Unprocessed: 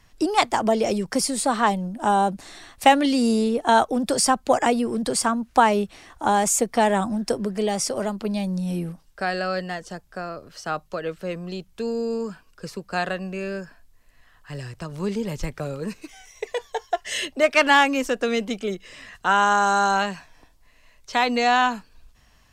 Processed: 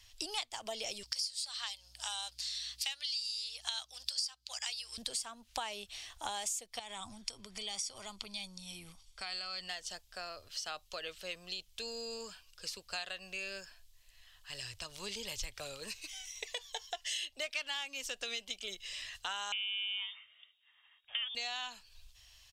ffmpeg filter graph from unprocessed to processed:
-filter_complex "[0:a]asettb=1/sr,asplit=3[a][b][c];[a]atrim=end=1.034[d];[b]atrim=start=1.03:end=4.98,asetpts=PTS-STARTPTS,afade=t=in:d=0.004:c=qsin,afade=t=out:st=3.946:d=0.004:c=qsin,highpass=1.4k,equalizer=f=4.8k:t=o:w=0.54:g=12.5,aeval=exprs='val(0)+0.00224*(sin(2*PI*60*n/s)+sin(2*PI*2*60*n/s)/2+sin(2*PI*3*60*n/s)/3+sin(2*PI*4*60*n/s)/4+sin(2*PI*5*60*n/s)/5)':c=same[e];[c]atrim=start=4.976[f];[d][e]acrossfade=d=0.004:c1=hsin:c2=qsin[g];[g][f]acrossfade=d=0.004:c1=qsin:c2=hsin,asettb=1/sr,asplit=3[h][i][j];[h]atrim=end=6.794[k];[i]atrim=start=6.79:end=9.68,asetpts=PTS-STARTPTS,afade=t=in:d=0.004:c=qsin,afade=t=out:st=2.886:d=0.004:c=qsin,lowpass=f=11k:w=0.5412,lowpass=f=11k:w=1.3066,aecho=1:1:0.9:0.51,atrim=end_sample=127449,acompressor=threshold=-27dB:ratio=5:attack=3.2:release=140:knee=1:detection=peak[l];[j]atrim=start=9.676[m];[k][l]acrossfade=d=0.004:c1=hsin:c2=qsin[n];[n][m]acrossfade=d=0.004:c1=qsin:c2=hsin,asettb=1/sr,asplit=3[o][p][q];[o]atrim=end=19.524[r];[p]atrim=start=19.52:end=21.35,asetpts=PTS-STARTPTS,afade=t=in:d=0.004:c=qsin,afade=t=out:st=1.826:d=0.004:c=qsin,aeval=exprs='if(lt(val(0),0),0.708*val(0),val(0))':c=same,highpass=f=990:p=1,lowpass=f=3.2k:t=q:w=0.5098,lowpass=f=3.2k:t=q:w=0.6013,lowpass=f=3.2k:t=q:w=0.9,lowpass=f=3.2k:t=q:w=2.563,afreqshift=-3800[s];[q]atrim=start=21.346[t];[r][s]acrossfade=d=0.004:c1=hsin:c2=qsin[u];[u][t]acrossfade=d=0.004:c1=qsin:c2=hsin,firequalizer=gain_entry='entry(100,0);entry(140,-19);entry(640,-5);entry(1400,-4);entry(3100,13);entry(9700,8)':delay=0.05:min_phase=1,acompressor=threshold=-29dB:ratio=6,volume=-7.5dB"

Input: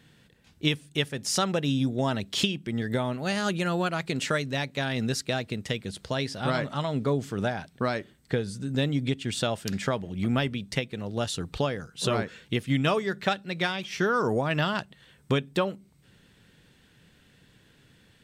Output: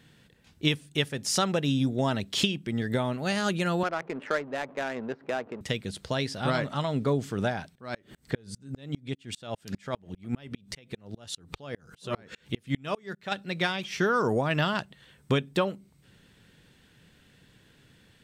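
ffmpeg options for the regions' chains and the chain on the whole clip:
-filter_complex "[0:a]asettb=1/sr,asplit=3[a][b][c];[a]atrim=end=3.834[d];[b]atrim=start=3.83:end=5.61,asetpts=PTS-STARTPTS,afade=t=in:d=0.004:c=qsin,afade=t=out:st=1.776:d=0.004:c=qsin,aeval=exprs='val(0)+0.5*0.0133*sgn(val(0))':c=same,highpass=360,lowpass=2.1k,adynamicsmooth=sensitivity=3:basefreq=700[e];[c]atrim=start=5.606[f];[d][e]acrossfade=d=0.004:c1=hsin:c2=qsin[g];[g][f]acrossfade=d=0.004:c1=qsin:c2=hsin,asettb=1/sr,asplit=3[h][i][j];[h]atrim=end=7.754[k];[i]atrim=start=7.75:end=13.32,asetpts=PTS-STARTPTS,afade=t=in:d=0.004:c=qsin,afade=t=out:st=5.566:d=0.004:c=qsin,acompressor=mode=upward:threshold=-27dB:ratio=2.5:attack=3.2:release=140:knee=2.83:detection=peak,aeval=exprs='val(0)*pow(10,-34*if(lt(mod(-5*n/s,1),2*abs(-5)/1000),1-mod(-5*n/s,1)/(2*abs(-5)/1000),(mod(-5*n/s,1)-2*abs(-5)/1000)/(1-2*abs(-5)/1000))/20)':c=same[l];[j]atrim=start=13.316[m];[k][l]acrossfade=d=0.004:c1=hsin:c2=qsin[n];[n][m]acrossfade=d=0.004:c1=qsin:c2=hsin"

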